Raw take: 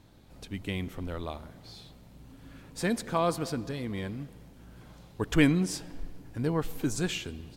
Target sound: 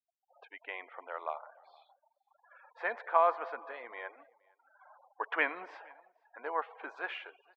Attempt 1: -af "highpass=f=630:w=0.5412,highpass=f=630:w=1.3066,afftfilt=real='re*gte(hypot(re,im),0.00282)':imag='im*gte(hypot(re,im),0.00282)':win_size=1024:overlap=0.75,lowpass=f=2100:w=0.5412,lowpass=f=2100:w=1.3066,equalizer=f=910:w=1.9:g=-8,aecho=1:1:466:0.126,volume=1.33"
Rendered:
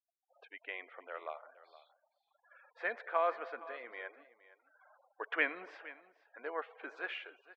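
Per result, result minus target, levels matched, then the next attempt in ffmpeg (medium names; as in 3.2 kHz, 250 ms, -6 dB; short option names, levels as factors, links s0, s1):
echo-to-direct +11 dB; 1 kHz band -3.0 dB
-af "highpass=f=630:w=0.5412,highpass=f=630:w=1.3066,afftfilt=real='re*gte(hypot(re,im),0.00282)':imag='im*gte(hypot(re,im),0.00282)':win_size=1024:overlap=0.75,lowpass=f=2100:w=0.5412,lowpass=f=2100:w=1.3066,equalizer=f=910:w=1.9:g=-8,aecho=1:1:466:0.0355,volume=1.33"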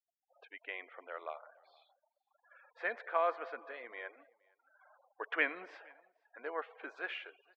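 1 kHz band -3.0 dB
-af "highpass=f=630:w=0.5412,highpass=f=630:w=1.3066,afftfilt=real='re*gte(hypot(re,im),0.00282)':imag='im*gte(hypot(re,im),0.00282)':win_size=1024:overlap=0.75,lowpass=f=2100:w=0.5412,lowpass=f=2100:w=1.3066,equalizer=f=910:w=1.9:g=3,aecho=1:1:466:0.0355,volume=1.33"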